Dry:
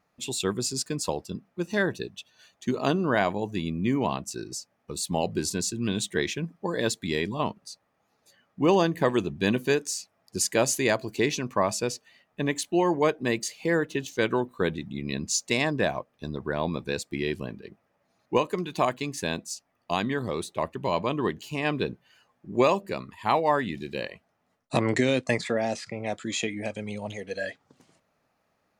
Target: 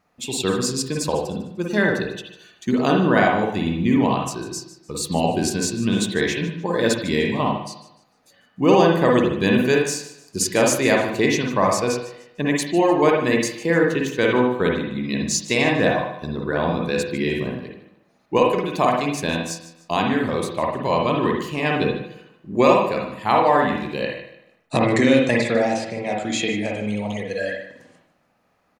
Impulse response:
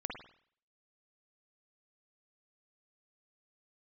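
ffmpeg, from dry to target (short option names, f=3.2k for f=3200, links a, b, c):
-filter_complex "[0:a]aecho=1:1:150|300|450:0.158|0.0539|0.0183[a];[1:a]atrim=start_sample=2205[b];[a][b]afir=irnorm=-1:irlink=0,volume=6.5dB"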